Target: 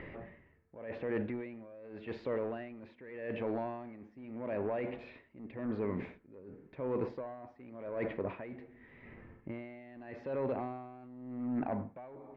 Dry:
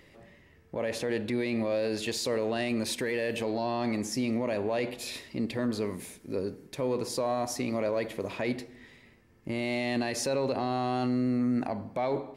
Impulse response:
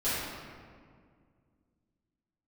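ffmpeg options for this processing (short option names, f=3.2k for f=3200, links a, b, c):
-af "asoftclip=type=hard:threshold=-24dB,lowpass=f=2.2k:w=0.5412,lowpass=f=2.2k:w=1.3066,areverse,acompressor=threshold=-42dB:ratio=16,areverse,aeval=exprs='val(0)*pow(10,-18*(0.5-0.5*cos(2*PI*0.86*n/s))/20)':c=same,volume=11dB"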